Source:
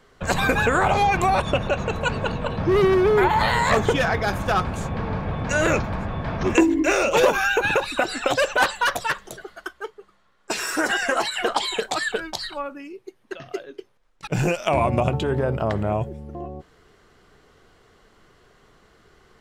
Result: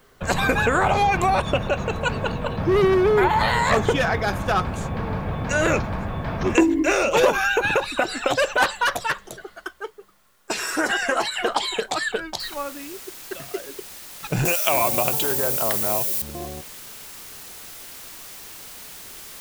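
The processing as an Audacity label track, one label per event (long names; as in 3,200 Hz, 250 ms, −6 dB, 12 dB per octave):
12.400000	12.400000	noise floor change −65 dB −40 dB
14.450000	16.220000	RIAA equalisation recording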